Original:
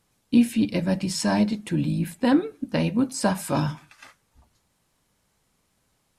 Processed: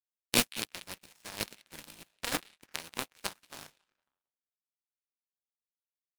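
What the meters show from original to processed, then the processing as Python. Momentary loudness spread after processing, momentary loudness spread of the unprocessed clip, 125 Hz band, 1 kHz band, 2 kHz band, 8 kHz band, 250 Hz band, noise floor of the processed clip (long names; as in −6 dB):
21 LU, 5 LU, −22.5 dB, −12.0 dB, −4.5 dB, −2.5 dB, −22.5 dB, below −85 dBFS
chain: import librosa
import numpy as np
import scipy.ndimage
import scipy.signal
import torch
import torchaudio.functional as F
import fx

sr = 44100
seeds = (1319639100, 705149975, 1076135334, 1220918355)

y = fx.spec_flatten(x, sr, power=0.3)
y = fx.echo_stepped(y, sr, ms=182, hz=2900.0, octaves=-0.7, feedback_pct=70, wet_db=-3.0)
y = fx.power_curve(y, sr, exponent=3.0)
y = F.gain(torch.from_numpy(y), 1.5).numpy()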